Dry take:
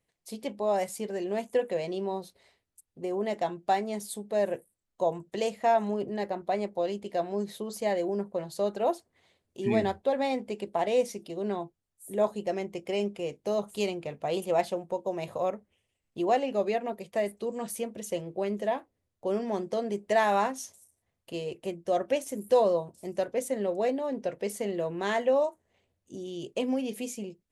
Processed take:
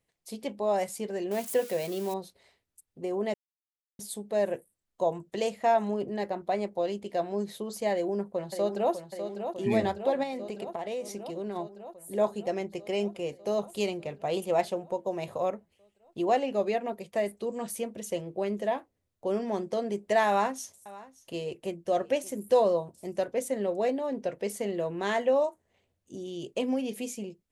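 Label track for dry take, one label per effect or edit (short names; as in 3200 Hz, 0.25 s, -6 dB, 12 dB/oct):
1.310000	2.140000	switching spikes of -31.5 dBFS
3.340000	3.990000	mute
7.920000	8.930000	echo throw 0.6 s, feedback 75%, level -8 dB
10.230000	11.560000	compressor, threshold -31 dBFS
20.280000	22.310000	echo 0.576 s -19.5 dB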